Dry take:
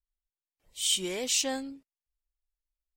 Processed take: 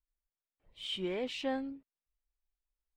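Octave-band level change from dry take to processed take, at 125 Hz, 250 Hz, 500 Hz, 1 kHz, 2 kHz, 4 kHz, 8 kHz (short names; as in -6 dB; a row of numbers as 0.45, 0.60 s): -0.5, -0.5, -1.0, -2.0, -5.5, -10.5, -29.0 dB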